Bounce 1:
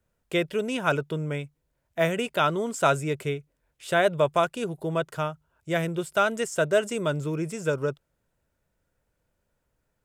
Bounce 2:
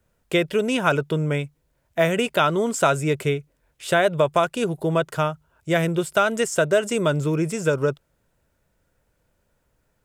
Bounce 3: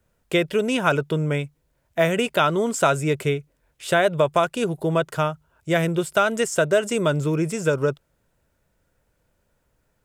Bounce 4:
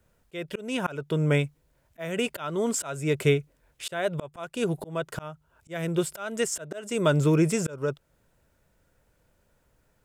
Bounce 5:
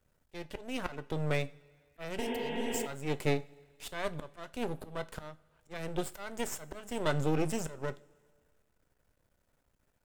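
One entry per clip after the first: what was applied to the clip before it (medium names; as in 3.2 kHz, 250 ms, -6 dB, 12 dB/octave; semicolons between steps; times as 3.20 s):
compression 2.5:1, threshold -23 dBFS, peak gain reduction 5.5 dB; trim +7 dB
no audible change
slow attack 480 ms; trim +1.5 dB
half-wave rectifier; spectral replace 2.24–2.84 s, 220–3700 Hz before; two-slope reverb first 0.27 s, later 1.9 s, from -20 dB, DRR 11.5 dB; trim -4.5 dB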